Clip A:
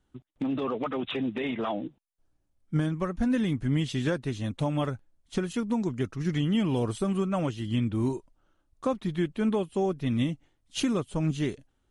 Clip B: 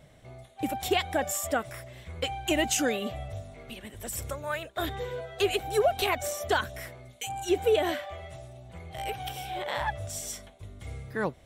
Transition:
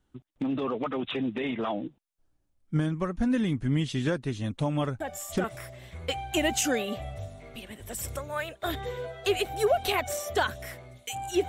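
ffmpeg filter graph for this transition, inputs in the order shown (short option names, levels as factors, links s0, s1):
-filter_complex "[1:a]asplit=2[s0][s1];[0:a]apad=whole_dur=11.48,atrim=end=11.48,atrim=end=5.442[s2];[s1]atrim=start=1.578:end=7.62[s3];[s0]atrim=start=1.14:end=1.58,asetpts=PTS-STARTPTS,volume=0.447,afade=t=in:d=0.004:c=hsin,afade=t=out:st=0.436:d=0.004:c=hsin,adelay=5000[s4];[s2][s3]acrossfade=d=0.004:c1=hsin:c2=hsin[s5];[s5][s4]amix=inputs=2:normalize=0"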